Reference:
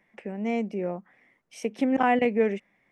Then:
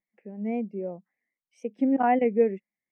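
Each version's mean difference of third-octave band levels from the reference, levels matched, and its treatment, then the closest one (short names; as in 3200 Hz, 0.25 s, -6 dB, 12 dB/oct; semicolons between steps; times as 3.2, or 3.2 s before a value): 7.0 dB: vibrato 3.8 Hz 66 cents; spectral expander 1.5:1; gain -1 dB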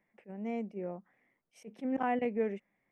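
2.5 dB: bell 5300 Hz -7.5 dB 2.6 oct; attack slew limiter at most 380 dB/s; gain -8.5 dB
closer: second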